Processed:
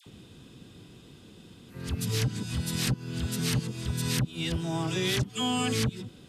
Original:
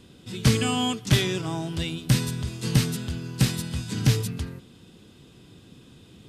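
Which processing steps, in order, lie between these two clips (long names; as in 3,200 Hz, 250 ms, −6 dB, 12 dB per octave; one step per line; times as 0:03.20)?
played backwards from end to start
all-pass dispersion lows, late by 67 ms, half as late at 1,200 Hz
downward compressor 12 to 1, threshold −24 dBFS, peak gain reduction 11 dB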